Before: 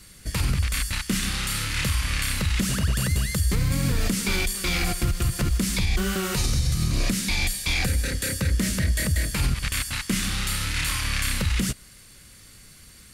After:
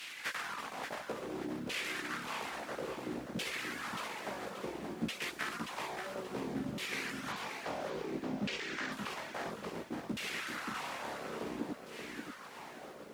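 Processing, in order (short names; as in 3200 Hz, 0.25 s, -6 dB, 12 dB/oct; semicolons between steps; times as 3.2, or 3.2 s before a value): spectral contrast lowered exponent 0.12; bell 170 Hz +12 dB 2.7 oct; compressor 16:1, threshold -36 dBFS, peak gain reduction 20.5 dB; chorus voices 4, 0.16 Hz, delay 16 ms, depth 3 ms; reverb removal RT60 0.91 s; thin delay 60 ms, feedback 68%, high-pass 5200 Hz, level -8.5 dB; LFO band-pass saw down 0.59 Hz 220–2700 Hz; 7.32–8.92 LPF 6900 Hz 24 dB/oct; lo-fi delay 0.579 s, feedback 35%, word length 13-bit, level -6.5 dB; gain +16.5 dB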